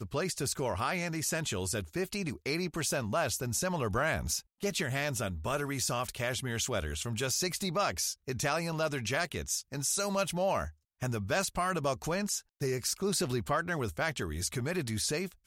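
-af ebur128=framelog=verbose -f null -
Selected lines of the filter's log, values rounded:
Integrated loudness:
  I:         -32.5 LUFS
  Threshold: -42.5 LUFS
Loudness range:
  LRA:         0.8 LU
  Threshold: -52.4 LUFS
  LRA low:   -32.8 LUFS
  LRA high:  -32.0 LUFS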